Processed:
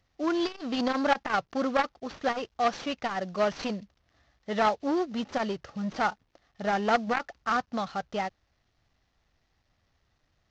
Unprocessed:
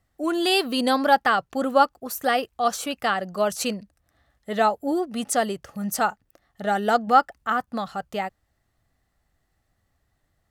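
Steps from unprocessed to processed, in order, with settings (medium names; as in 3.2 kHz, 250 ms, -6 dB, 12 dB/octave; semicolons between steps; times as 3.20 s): CVSD coder 32 kbps; transformer saturation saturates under 1.3 kHz; trim -1.5 dB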